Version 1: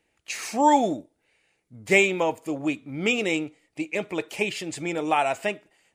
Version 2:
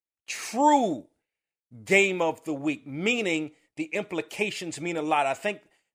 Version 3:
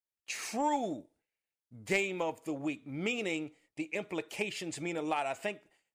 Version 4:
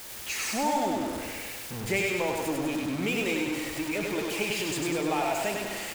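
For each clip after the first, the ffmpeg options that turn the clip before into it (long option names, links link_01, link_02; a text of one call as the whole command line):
ffmpeg -i in.wav -af "agate=range=-33dB:threshold=-53dB:ratio=3:detection=peak,volume=-1.5dB" out.wav
ffmpeg -i in.wav -af "acompressor=threshold=-29dB:ratio=2,aeval=exprs='0.211*(cos(1*acos(clip(val(0)/0.211,-1,1)))-cos(1*PI/2))+0.0376*(cos(3*acos(clip(val(0)/0.211,-1,1)))-cos(3*PI/2))+0.00596*(cos(5*acos(clip(val(0)/0.211,-1,1)))-cos(5*PI/2))':channel_layout=same" out.wav
ffmpeg -i in.wav -af "aeval=exprs='val(0)+0.5*0.0251*sgn(val(0))':channel_layout=same,aecho=1:1:99|198|297|396|495|594|693|792|891:0.708|0.418|0.246|0.145|0.0858|0.0506|0.0299|0.0176|0.0104" out.wav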